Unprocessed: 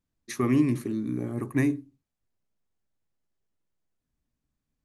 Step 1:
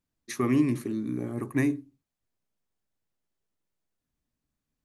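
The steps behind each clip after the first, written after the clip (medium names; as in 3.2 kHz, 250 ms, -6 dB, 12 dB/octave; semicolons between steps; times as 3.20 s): bass shelf 140 Hz -4.5 dB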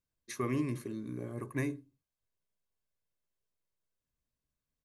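comb 1.9 ms, depth 41%; trim -6.5 dB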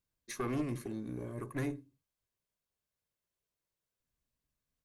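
single-diode clipper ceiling -35 dBFS; trim +1 dB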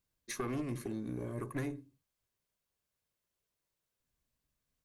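compression, threshold -36 dBFS, peak gain reduction 6.5 dB; trim +2.5 dB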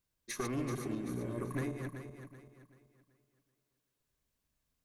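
backward echo that repeats 191 ms, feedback 59%, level -5 dB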